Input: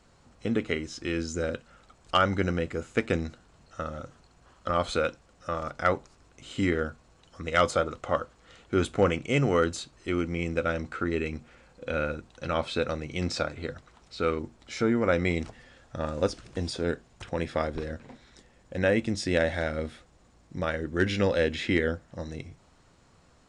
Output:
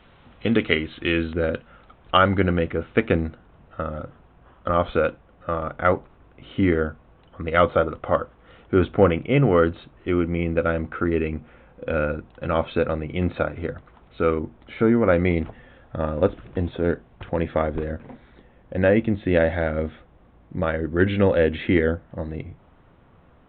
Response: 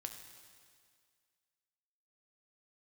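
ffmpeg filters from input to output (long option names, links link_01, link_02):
-af "asetnsamples=nb_out_samples=441:pad=0,asendcmd='1.33 highshelf g -4;3.13 highshelf g -12',highshelf=frequency=2500:gain=9,aresample=8000,aresample=44100,volume=7dB"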